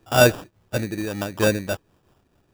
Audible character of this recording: aliases and images of a low sample rate 2.1 kHz, jitter 0%; random flutter of the level

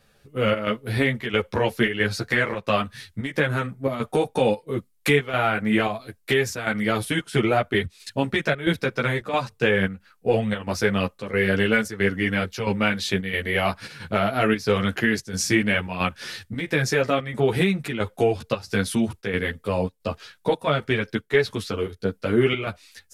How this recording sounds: chopped level 1.5 Hz, depth 60%, duty 80%; a shimmering, thickened sound

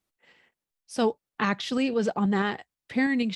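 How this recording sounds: tremolo saw up 6.2 Hz, depth 35%

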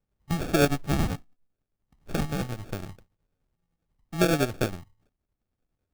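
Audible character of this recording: tremolo triangle 10 Hz, depth 60%; phasing stages 4, 0.72 Hz, lowest notch 360–2700 Hz; aliases and images of a low sample rate 1 kHz, jitter 0%

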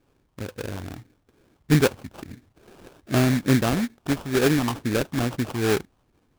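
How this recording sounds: phasing stages 4, 2.3 Hz, lowest notch 500–2600 Hz; aliases and images of a low sample rate 2 kHz, jitter 20%

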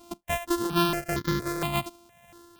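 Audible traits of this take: a buzz of ramps at a fixed pitch in blocks of 128 samples; tremolo triangle 1.8 Hz, depth 55%; notches that jump at a steady rate 4.3 Hz 490–2600 Hz

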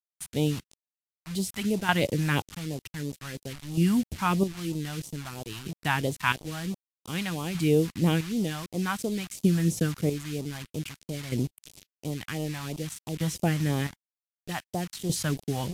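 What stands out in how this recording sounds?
chopped level 0.53 Hz, depth 65%, duty 35%; a quantiser's noise floor 8-bit, dither none; phasing stages 2, 3 Hz, lowest notch 410–1600 Hz; Vorbis

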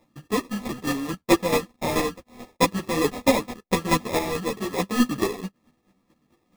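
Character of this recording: a buzz of ramps at a fixed pitch in blocks of 16 samples; chopped level 4.6 Hz, depth 60%, duty 20%; aliases and images of a low sample rate 1.5 kHz, jitter 0%; a shimmering, thickened sound

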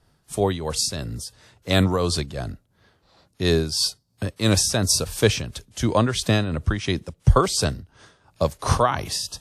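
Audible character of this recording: tremolo triangle 2.9 Hz, depth 65%; WMA

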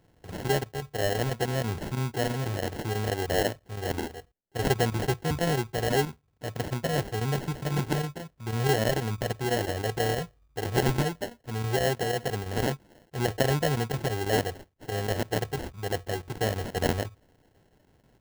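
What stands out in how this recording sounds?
chopped level 6.1 Hz, depth 60%, duty 90%; aliases and images of a low sample rate 1.2 kHz, jitter 0%

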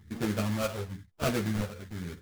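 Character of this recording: phasing stages 8, 1 Hz, lowest notch 290–1300 Hz; aliases and images of a low sample rate 1.9 kHz, jitter 20%; a shimmering, thickened sound

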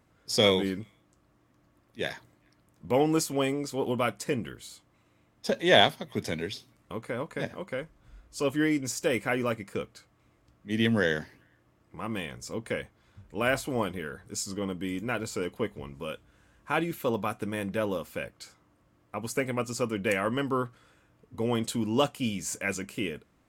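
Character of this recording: noise floor -67 dBFS; spectral tilt -4.0 dB/octave

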